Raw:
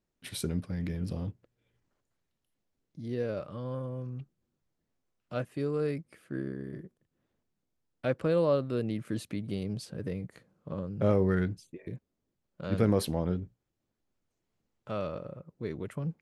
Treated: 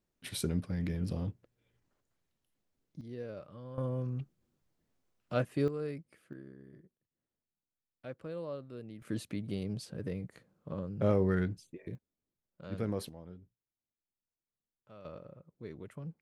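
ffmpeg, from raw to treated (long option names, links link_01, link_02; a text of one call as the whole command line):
ffmpeg -i in.wav -af "asetnsamples=nb_out_samples=441:pad=0,asendcmd='3.01 volume volume -9.5dB;3.78 volume volume 2.5dB;5.68 volume volume -7dB;6.33 volume volume -14.5dB;9.02 volume volume -2.5dB;11.95 volume volume -9.5dB;13.09 volume volume -19dB;15.05 volume volume -9dB',volume=-0.5dB" out.wav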